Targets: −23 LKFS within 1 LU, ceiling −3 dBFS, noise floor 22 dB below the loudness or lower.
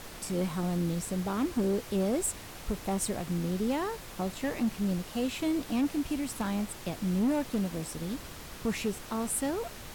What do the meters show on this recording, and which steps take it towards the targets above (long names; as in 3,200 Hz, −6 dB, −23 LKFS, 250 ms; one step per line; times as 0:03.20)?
share of clipped samples 1.2%; peaks flattened at −23.0 dBFS; background noise floor −45 dBFS; target noise floor −54 dBFS; integrated loudness −32.0 LKFS; sample peak −23.0 dBFS; target loudness −23.0 LKFS
→ clipped peaks rebuilt −23 dBFS
noise reduction from a noise print 9 dB
level +9 dB